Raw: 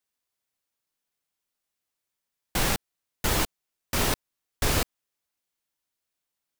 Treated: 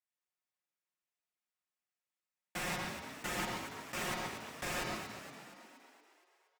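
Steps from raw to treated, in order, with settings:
high-pass filter 1,100 Hz 6 dB per octave
spectral tilt −4 dB per octave
comb filter 5.6 ms
echo with shifted repeats 235 ms, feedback 57%, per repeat +56 Hz, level −9 dB
convolution reverb RT60 1.0 s, pre-delay 117 ms, DRR 3.5 dB
level −5.5 dB

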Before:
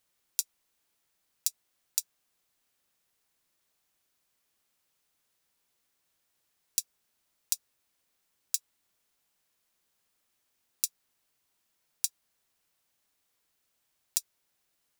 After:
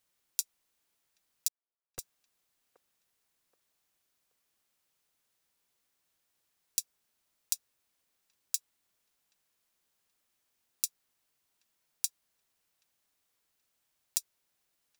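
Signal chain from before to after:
0:01.48–0:01.99: comparator with hysteresis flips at −17 dBFS
delay with a band-pass on its return 777 ms, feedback 32%, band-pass 730 Hz, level −15.5 dB
level −2 dB

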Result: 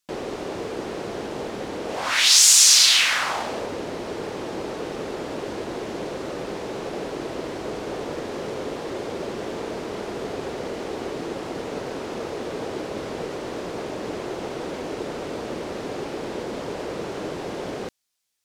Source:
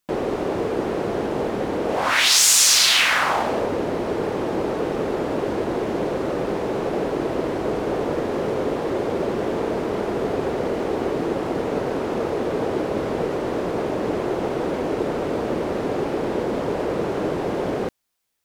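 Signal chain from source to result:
parametric band 5,800 Hz +10 dB 2.6 octaves
level −7.5 dB

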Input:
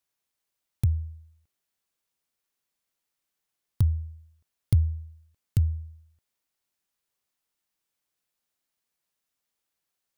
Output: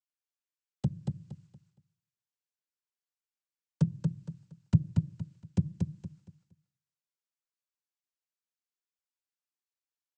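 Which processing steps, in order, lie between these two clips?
noise gate with hold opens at −59 dBFS
cochlear-implant simulation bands 8
repeating echo 233 ms, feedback 28%, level −4 dB

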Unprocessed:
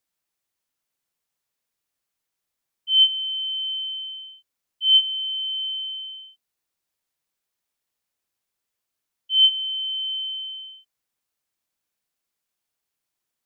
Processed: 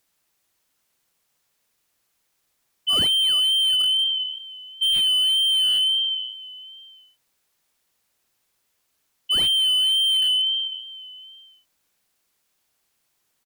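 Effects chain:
0:02.93–0:03.40: comb filter 2.2 ms, depth 52%
in parallel at −4 dB: soft clipping −18.5 dBFS, distortion −8 dB
on the sum: tape wow and flutter 35 cents
on a send: single-tap delay 807 ms −22 dB
on the sum: slew-rate limiting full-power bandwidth 160 Hz
level +7 dB

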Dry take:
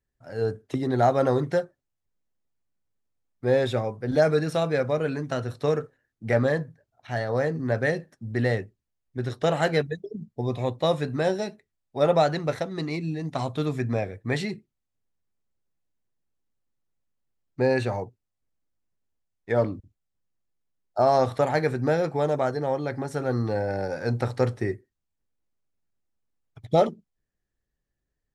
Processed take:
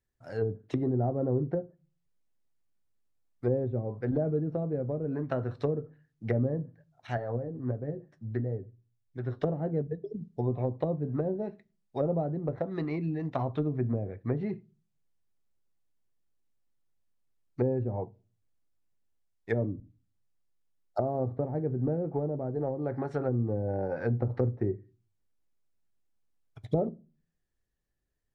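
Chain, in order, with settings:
treble cut that deepens with the level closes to 350 Hz, closed at −21.5 dBFS
0:07.17–0:09.39: flanger 1.5 Hz, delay 6 ms, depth 4.5 ms, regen +46%
convolution reverb RT60 0.35 s, pre-delay 3 ms, DRR 19 dB
level −2 dB

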